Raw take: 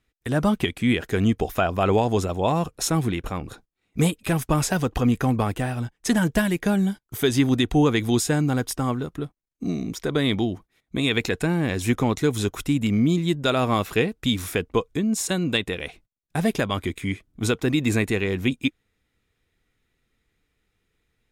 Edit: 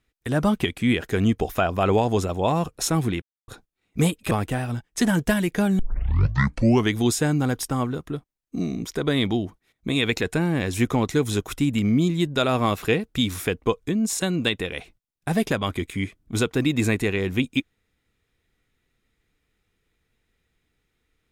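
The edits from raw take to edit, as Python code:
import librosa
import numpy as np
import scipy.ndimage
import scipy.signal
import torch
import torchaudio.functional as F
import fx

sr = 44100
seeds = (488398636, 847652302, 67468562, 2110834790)

y = fx.edit(x, sr, fx.silence(start_s=3.22, length_s=0.26),
    fx.cut(start_s=4.31, length_s=1.08),
    fx.tape_start(start_s=6.87, length_s=1.15), tone=tone)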